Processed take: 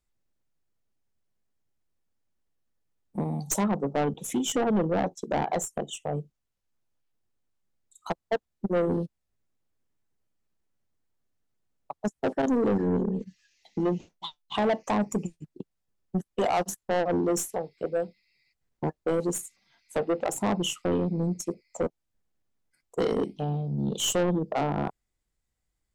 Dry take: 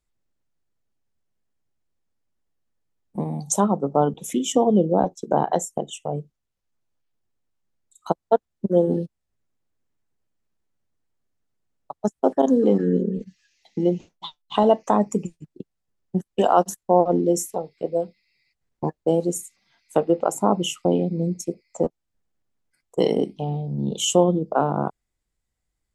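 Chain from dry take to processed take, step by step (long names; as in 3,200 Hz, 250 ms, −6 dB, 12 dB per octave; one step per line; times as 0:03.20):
stylus tracing distortion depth 0.025 ms
soft clipping −18.5 dBFS, distortion −8 dB
level −1.5 dB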